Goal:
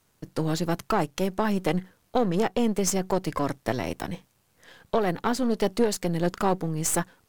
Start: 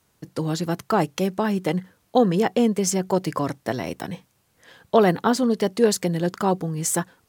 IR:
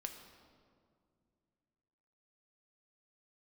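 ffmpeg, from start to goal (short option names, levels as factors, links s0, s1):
-af "aeval=exprs='if(lt(val(0),0),0.447*val(0),val(0))':c=same,alimiter=limit=0.251:level=0:latency=1:release=444,volume=1.12"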